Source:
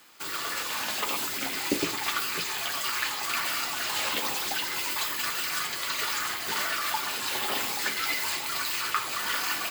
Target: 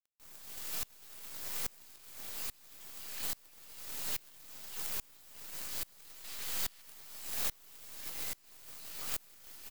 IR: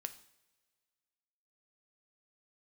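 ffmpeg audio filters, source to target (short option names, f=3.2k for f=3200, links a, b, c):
-filter_complex "[0:a]highpass=1.2k,aderivative,acrossover=split=1600|6000[a][b][c];[a]adelay=70[d];[b]adelay=150[e];[d][e][c]amix=inputs=3:normalize=0,alimiter=limit=-19.5dB:level=0:latency=1:release=475,flanger=delay=18.5:depth=7.8:speed=1.1,asettb=1/sr,asplit=3[f][g][h];[f]atrim=end=6.244[i];[g]atrim=start=6.24:end=6.82,asetpts=PTS-STARTPTS,afade=t=in:d=0.004:c=qsin,afade=t=out:st=0.576:d=0.004:c=qsin,asplit=2[j][k];[k]highpass=f=720:p=1,volume=23dB,asoftclip=type=tanh:threshold=-23dB[l];[j][l]amix=inputs=2:normalize=0,lowpass=f=6.1k:p=1,volume=-6dB[m];[h]atrim=start=6.816[n];[i][m]acrossfade=d=0.004:c1=hsin:c2=qsin[o];[o][n]acrossfade=d=0.004:c1=qsin:c2=hsin,acrusher=bits=5:dc=4:mix=0:aa=0.000001,acompressor=mode=upward:threshold=-44dB:ratio=2.5,aeval=exprs='val(0)*pow(10,-29*if(lt(mod(-1.2*n/s,1),2*abs(-1.2)/1000),1-mod(-1.2*n/s,1)/(2*abs(-1.2)/1000),(mod(-1.2*n/s,1)-2*abs(-1.2)/1000)/(1-2*abs(-1.2)/1000))/20)':c=same,volume=6dB"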